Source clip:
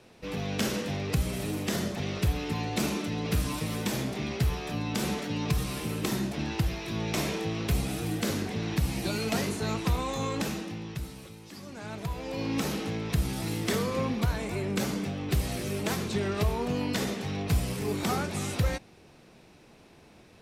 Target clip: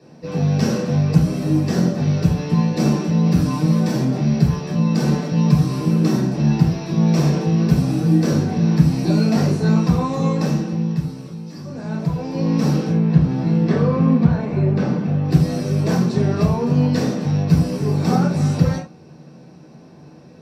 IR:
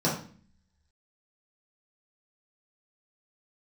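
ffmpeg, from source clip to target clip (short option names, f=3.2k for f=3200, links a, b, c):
-filter_complex "[0:a]asettb=1/sr,asplit=3[a][b][c];[a]atrim=end=12.914[d];[b]atrim=start=12.91:end=15.25,asetpts=PTS-STARTPTS,afade=t=in:d=0.004:c=qsin,afade=t=out:st=2.336:d=0.004:c=qsin,lowpass=3k[e];[c]atrim=start=15.246[f];[d][e]acrossfade=d=0.004:c1=hsin:c2=qsin[g];[g][f]acrossfade=d=0.004:c1=qsin:c2=hsin[h];[1:a]atrim=start_sample=2205,afade=t=out:st=0.15:d=0.01,atrim=end_sample=7056[i];[h][i]afir=irnorm=-1:irlink=0,volume=-6.5dB"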